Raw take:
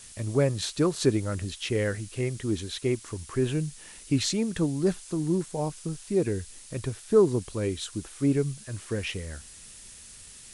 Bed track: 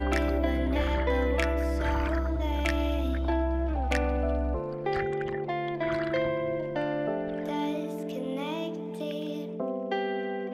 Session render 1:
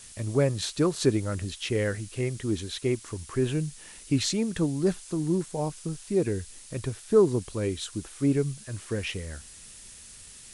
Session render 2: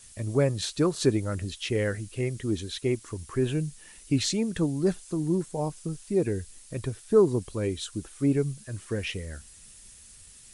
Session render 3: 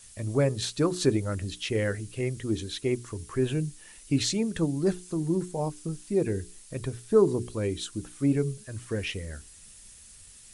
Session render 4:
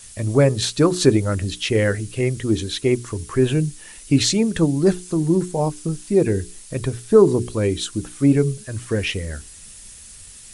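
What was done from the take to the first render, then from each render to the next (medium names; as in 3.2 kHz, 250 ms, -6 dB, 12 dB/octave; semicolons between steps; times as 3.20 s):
no audible change
noise reduction 6 dB, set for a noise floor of -48 dBFS
hum notches 60/120/180/240/300/360/420 Hz
trim +9 dB; peak limiter -2 dBFS, peak gain reduction 1.5 dB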